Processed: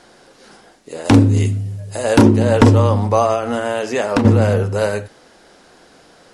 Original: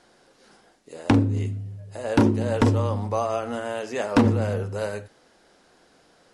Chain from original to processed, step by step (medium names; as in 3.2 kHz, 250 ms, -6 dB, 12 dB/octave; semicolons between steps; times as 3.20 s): 1.04–2.21 s: treble shelf 3.6 kHz -> 5.2 kHz +10 dB; 3.32–4.25 s: compression 6:1, threshold -25 dBFS, peak gain reduction 11 dB; loudness maximiser +11.5 dB; trim -1 dB